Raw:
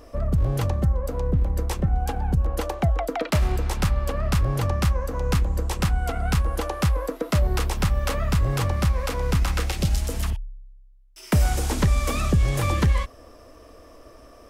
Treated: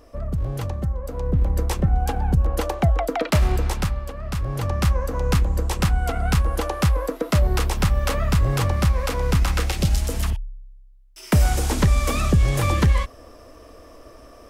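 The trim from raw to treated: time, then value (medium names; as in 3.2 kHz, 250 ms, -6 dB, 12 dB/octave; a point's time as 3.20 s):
1.04 s -3.5 dB
1.46 s +3 dB
3.66 s +3 dB
4.15 s -7.5 dB
4.91 s +2.5 dB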